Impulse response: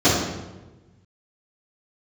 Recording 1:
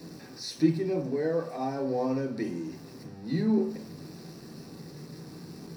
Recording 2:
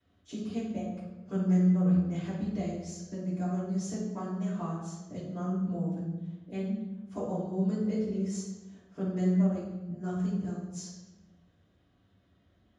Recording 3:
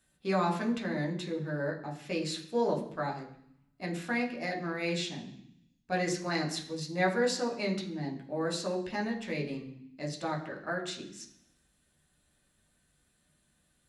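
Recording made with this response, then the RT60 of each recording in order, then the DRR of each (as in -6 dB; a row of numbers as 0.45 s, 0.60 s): 2; 0.45 s, 1.2 s, 0.65 s; 0.5 dB, -16.0 dB, -1.0 dB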